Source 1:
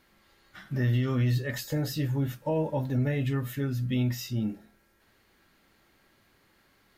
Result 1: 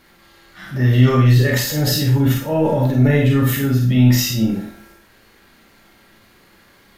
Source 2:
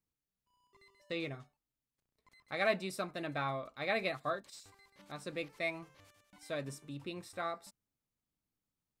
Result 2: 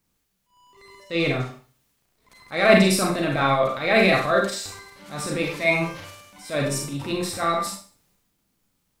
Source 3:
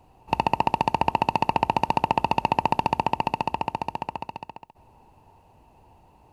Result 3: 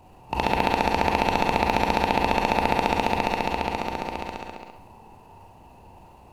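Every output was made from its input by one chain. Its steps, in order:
transient designer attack −10 dB, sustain +6 dB
four-comb reverb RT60 0.41 s, combs from 32 ms, DRR 0.5 dB
normalise the peak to −1.5 dBFS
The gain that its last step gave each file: +11.0, +15.5, +4.0 decibels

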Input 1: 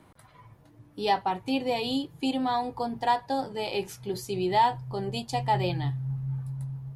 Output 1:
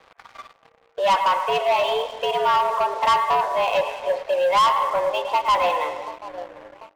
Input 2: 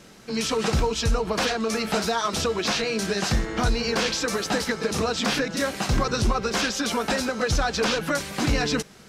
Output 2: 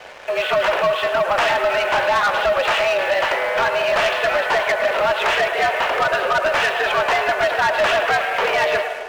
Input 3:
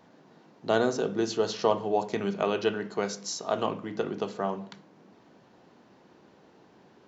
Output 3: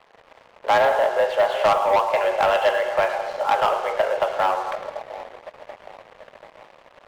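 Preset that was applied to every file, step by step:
comb and all-pass reverb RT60 1 s, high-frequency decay 0.4×, pre-delay 120 ms, DRR 15 dB
in parallel at −0.5 dB: downward compressor, threshold −43 dBFS
on the sum: single-sideband voice off tune +170 Hz 340–2,800 Hz
on a send: echo with a time of its own for lows and highs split 710 Hz, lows 736 ms, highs 107 ms, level −12 dB
on the sum: leveller curve on the samples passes 3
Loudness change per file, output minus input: +8.0, +6.5, +8.5 LU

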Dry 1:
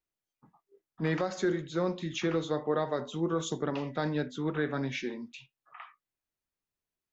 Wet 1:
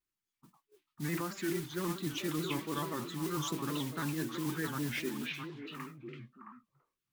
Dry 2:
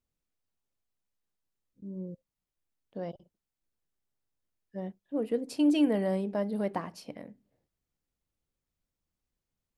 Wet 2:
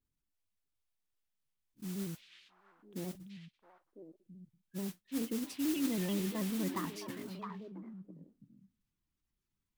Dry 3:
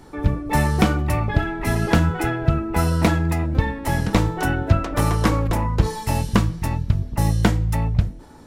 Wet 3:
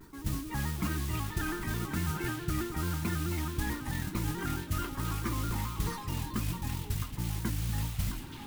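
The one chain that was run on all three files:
gate on every frequency bin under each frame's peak −25 dB strong
flat-topped bell 600 Hz −13.5 dB 1 octave
reversed playback
downward compressor 5 to 1, threshold −32 dBFS
reversed playback
noise that follows the level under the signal 11 dB
on a send: echo through a band-pass that steps 333 ms, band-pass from 2,800 Hz, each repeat −1.4 octaves, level −1 dB
on the sum: pitch modulation by a square or saw wave square 4.6 Hz, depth 100 cents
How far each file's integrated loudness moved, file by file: −4.5, −7.5, −13.0 LU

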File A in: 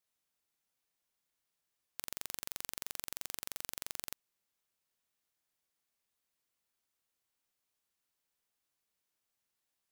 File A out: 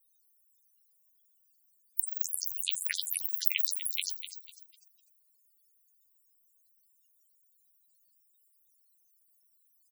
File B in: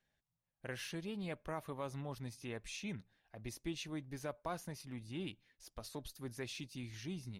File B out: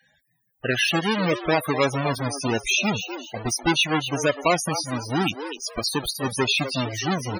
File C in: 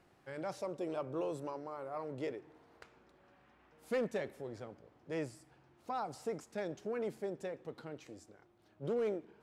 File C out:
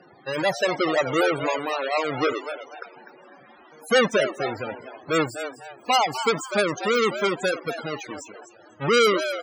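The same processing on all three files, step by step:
each half-wave held at its own peak
spectral tilt +3 dB per octave
soft clipping −6 dBFS
on a send: echo with shifted repeats 249 ms, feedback 32%, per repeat +140 Hz, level −10 dB
on the sum: spectral peaks only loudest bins 32
normalise the peak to −6 dBFS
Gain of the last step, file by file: +15.0, +20.0, +16.0 decibels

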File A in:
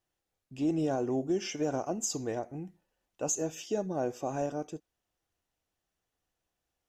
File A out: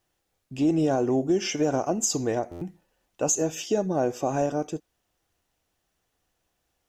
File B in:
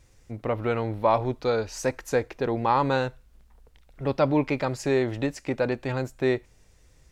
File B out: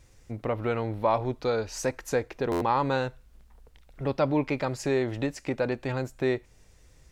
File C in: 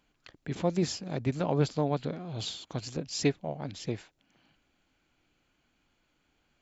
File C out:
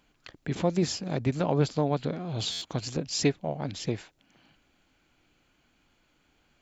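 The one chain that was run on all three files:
in parallel at −1.5 dB: downward compressor, threshold −32 dBFS
on the sum: buffer that repeats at 0:02.51, samples 512, times 8
normalise the peak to −12 dBFS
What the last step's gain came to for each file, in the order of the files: +3.5, −4.5, 0.0 decibels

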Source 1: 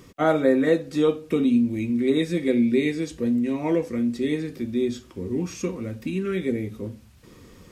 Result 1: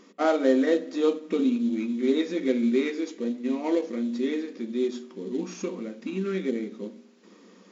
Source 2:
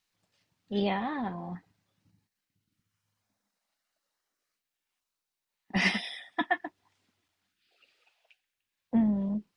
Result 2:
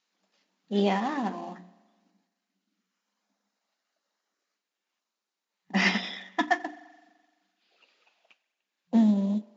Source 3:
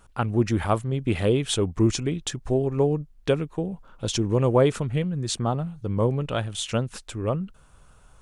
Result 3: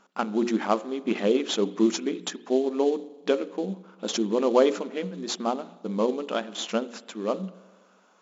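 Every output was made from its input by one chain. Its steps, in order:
mains-hum notches 60/120/180/240/300/360/420/480/540 Hz
spring reverb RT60 1.4 s, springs 42 ms, chirp 70 ms, DRR 18 dB
in parallel at −10.5 dB: sample-rate reduction 3,700 Hz, jitter 20%
on the sum: brick-wall band-pass 180–7,400 Hz
loudness normalisation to −27 LKFS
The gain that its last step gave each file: −4.0, +2.0, −1.5 decibels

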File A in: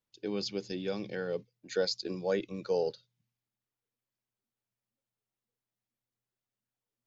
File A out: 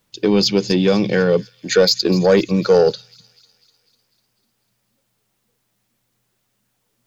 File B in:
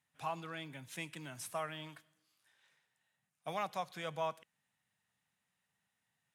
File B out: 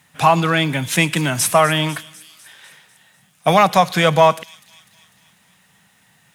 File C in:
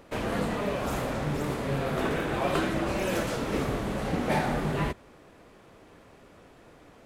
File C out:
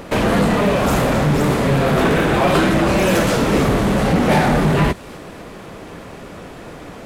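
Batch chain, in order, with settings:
parametric band 180 Hz +4.5 dB 0.42 octaves
in parallel at −1 dB: downward compressor, threshold −36 dBFS
on the sum: soft clipping −21 dBFS
delay with a high-pass on its return 249 ms, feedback 57%, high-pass 4,100 Hz, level −14 dB
loudness normalisation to −16 LKFS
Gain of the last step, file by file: +16.5, +22.0, +12.5 decibels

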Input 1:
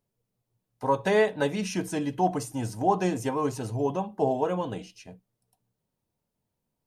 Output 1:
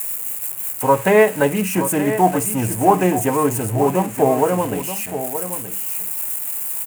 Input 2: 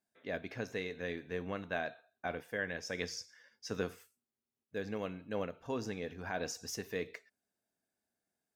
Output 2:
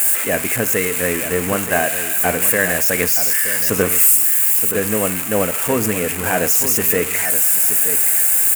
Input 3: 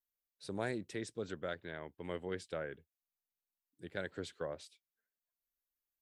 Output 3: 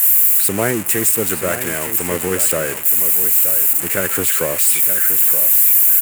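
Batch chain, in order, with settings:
spike at every zero crossing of −25 dBFS
flat-topped bell 4,500 Hz −14 dB 1.1 octaves
on a send: single-tap delay 924 ms −10.5 dB
on the sum: highs frequency-modulated by the lows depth 0.11 ms
normalise the peak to −2 dBFS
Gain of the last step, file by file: +9.5, +18.5, +19.0 decibels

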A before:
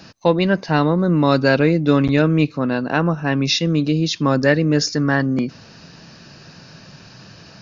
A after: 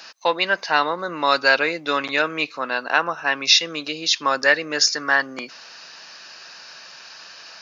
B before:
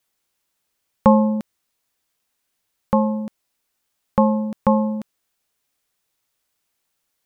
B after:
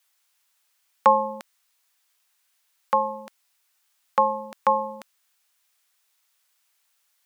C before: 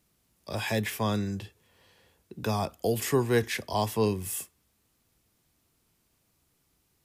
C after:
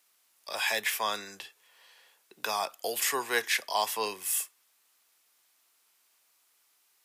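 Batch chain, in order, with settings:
high-pass filter 940 Hz 12 dB per octave
level +5 dB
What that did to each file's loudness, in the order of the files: −2.0, −4.0, −0.5 LU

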